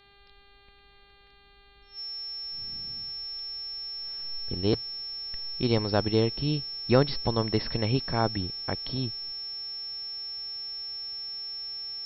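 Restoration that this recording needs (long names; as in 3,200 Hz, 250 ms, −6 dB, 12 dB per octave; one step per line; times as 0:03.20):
hum removal 400.4 Hz, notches 11
notch filter 5,400 Hz, Q 30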